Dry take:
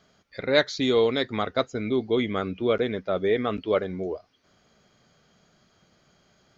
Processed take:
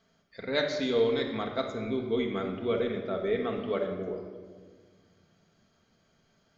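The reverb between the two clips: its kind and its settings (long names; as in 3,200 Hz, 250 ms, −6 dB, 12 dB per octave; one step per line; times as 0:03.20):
rectangular room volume 1,800 cubic metres, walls mixed, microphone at 1.6 metres
level −8.5 dB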